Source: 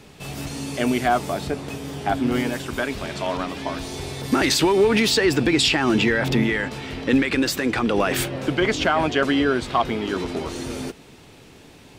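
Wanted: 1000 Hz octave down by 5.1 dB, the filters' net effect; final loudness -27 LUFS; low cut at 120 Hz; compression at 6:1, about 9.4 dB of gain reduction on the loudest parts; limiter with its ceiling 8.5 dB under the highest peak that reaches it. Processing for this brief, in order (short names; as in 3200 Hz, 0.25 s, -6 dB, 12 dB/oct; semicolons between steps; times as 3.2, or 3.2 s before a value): HPF 120 Hz; bell 1000 Hz -7.5 dB; compressor 6:1, threshold -25 dBFS; gain +4.5 dB; limiter -18 dBFS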